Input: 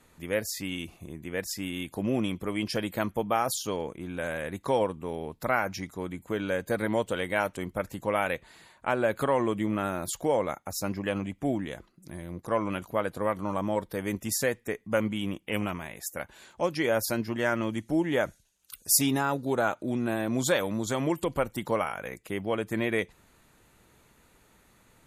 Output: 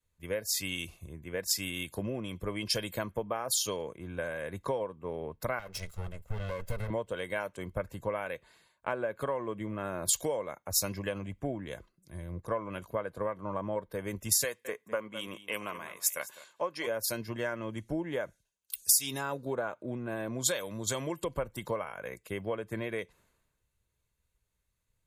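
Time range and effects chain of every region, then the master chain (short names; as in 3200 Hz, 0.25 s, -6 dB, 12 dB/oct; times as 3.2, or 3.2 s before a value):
5.59–6.9 minimum comb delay 1.5 ms + compressor 4:1, threshold -32 dBFS
14.44–16.87 HPF 380 Hz 6 dB/oct + bell 1100 Hz +5.5 dB 0.39 oct + echo 0.207 s -13.5 dB
whole clip: comb 1.9 ms, depth 36%; compressor 8:1, threshold -32 dBFS; three-band expander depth 100%; gain +1 dB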